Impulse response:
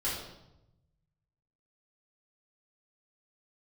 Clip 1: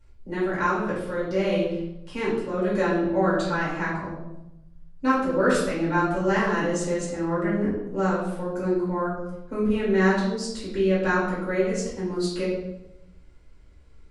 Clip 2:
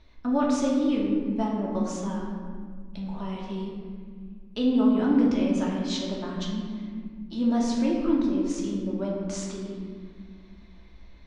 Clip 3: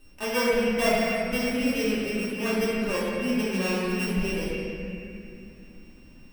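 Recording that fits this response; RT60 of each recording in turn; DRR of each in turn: 1; 0.90, 1.8, 2.6 seconds; −8.0, −3.5, −10.5 decibels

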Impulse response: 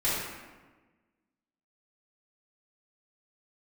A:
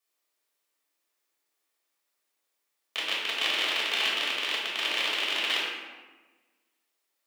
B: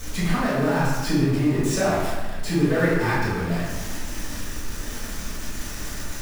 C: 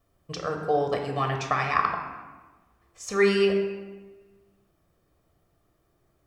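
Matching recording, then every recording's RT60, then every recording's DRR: B; 1.3, 1.3, 1.3 seconds; −7.0, −11.5, 2.5 decibels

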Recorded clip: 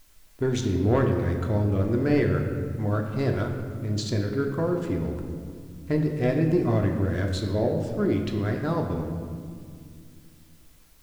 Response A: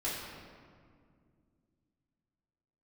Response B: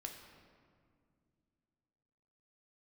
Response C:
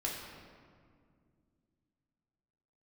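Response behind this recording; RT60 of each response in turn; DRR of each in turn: B; 2.1, 2.2, 2.1 seconds; −9.5, 2.0, −4.0 decibels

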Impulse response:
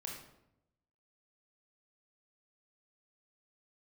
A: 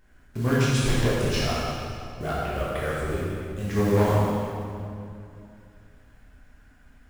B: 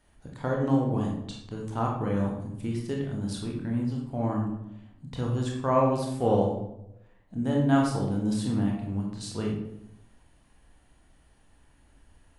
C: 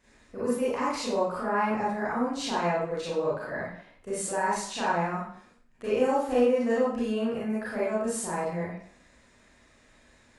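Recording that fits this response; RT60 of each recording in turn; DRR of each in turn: B; 2.5, 0.85, 0.60 seconds; −8.0, −1.5, −9.5 decibels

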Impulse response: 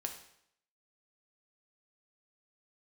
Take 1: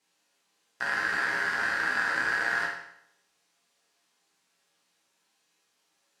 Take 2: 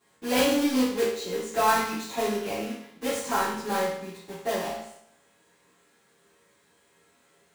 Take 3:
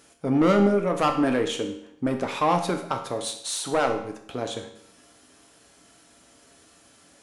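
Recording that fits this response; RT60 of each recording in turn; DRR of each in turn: 3; 0.70, 0.70, 0.70 seconds; −5.5, −13.5, 3.5 decibels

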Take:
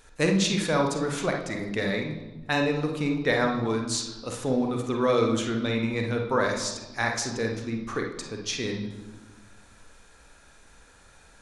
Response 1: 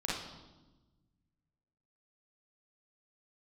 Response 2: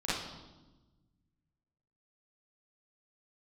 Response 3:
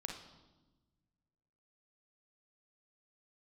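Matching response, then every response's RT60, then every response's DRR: 3; 1.1, 1.1, 1.2 seconds; −6.0, −11.0, 2.0 decibels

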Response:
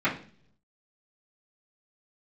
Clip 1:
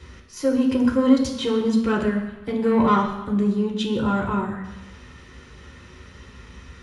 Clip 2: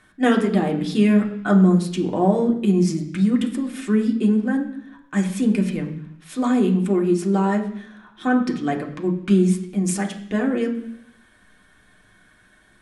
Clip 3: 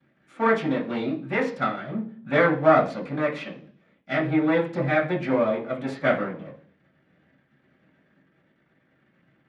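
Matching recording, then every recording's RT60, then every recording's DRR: 3; 1.1, 0.70, 0.50 seconds; −2.5, 0.5, −13.0 decibels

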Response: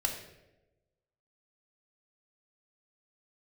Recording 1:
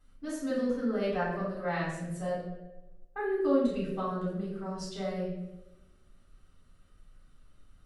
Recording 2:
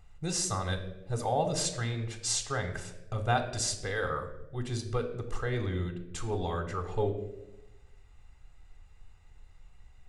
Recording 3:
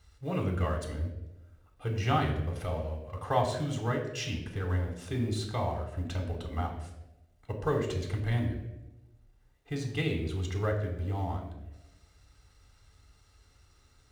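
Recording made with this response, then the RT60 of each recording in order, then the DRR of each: 3; 1.1, 1.1, 1.1 seconds; −7.0, 6.5, 2.5 decibels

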